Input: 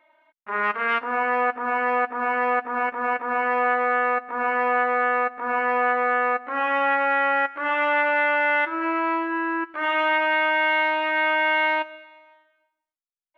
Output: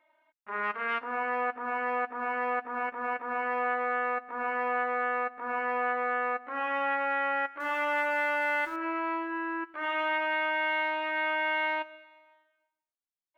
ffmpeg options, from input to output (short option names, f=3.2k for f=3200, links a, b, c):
-filter_complex "[0:a]asettb=1/sr,asplit=3[a][b][c];[a]atrim=end=7.604[d];[b]atrim=start=7.6:end=8.76,asetpts=PTS-STARTPTS,afade=t=in:d=0.004:c=qsin,afade=t=out:st=1.156:d=0.004:c=qsin,aeval=exprs='val(0)+0.5*0.0112*sgn(val(0))':c=same[e];[c]atrim=start=8.756[f];[d][e]acrossfade=d=0.004:c1=hsin:c2=qsin[g];[g][f]acrossfade=d=0.004:c1=qsin:c2=hsin,volume=-8dB"